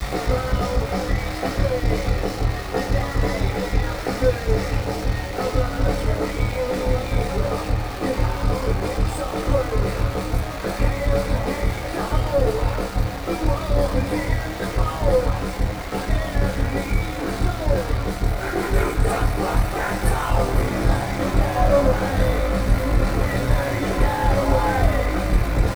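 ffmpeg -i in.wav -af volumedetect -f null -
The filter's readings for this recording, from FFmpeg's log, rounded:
mean_volume: -20.5 dB
max_volume: -5.0 dB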